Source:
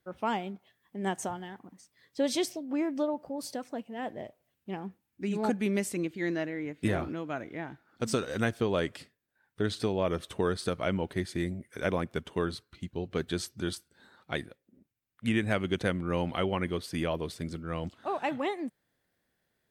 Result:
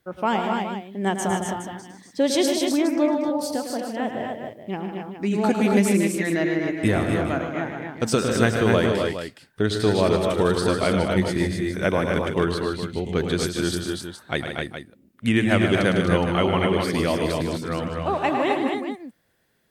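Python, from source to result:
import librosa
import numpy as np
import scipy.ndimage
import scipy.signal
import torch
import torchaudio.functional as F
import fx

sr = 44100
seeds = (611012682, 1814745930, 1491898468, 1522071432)

y = fx.echo_multitap(x, sr, ms=(106, 151, 235, 261, 416), db=(-8.5, -9.0, -8.0, -5.0, -10.5))
y = y * librosa.db_to_amplitude(7.5)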